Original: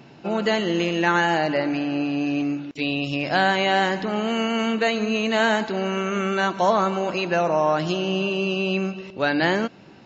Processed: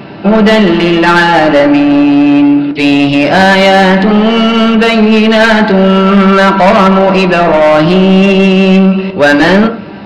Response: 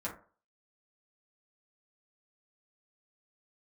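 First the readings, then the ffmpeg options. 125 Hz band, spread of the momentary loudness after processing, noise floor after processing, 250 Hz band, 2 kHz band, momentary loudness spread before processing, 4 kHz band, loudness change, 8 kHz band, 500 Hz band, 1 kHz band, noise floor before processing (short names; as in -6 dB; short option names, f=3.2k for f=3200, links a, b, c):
+19.0 dB, 3 LU, -23 dBFS, +18.5 dB, +14.0 dB, 6 LU, +14.0 dB, +16.0 dB, n/a, +15.5 dB, +14.0 dB, -47 dBFS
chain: -filter_complex "[0:a]aeval=exprs='0.447*sin(PI/2*2.51*val(0)/0.447)':c=same,aresample=11025,aresample=44100,asplit=2[a][b];[1:a]atrim=start_sample=2205,lowpass=3.9k[c];[b][c]afir=irnorm=-1:irlink=0,volume=-2dB[d];[a][d]amix=inputs=2:normalize=0,acontrast=39,volume=-1dB"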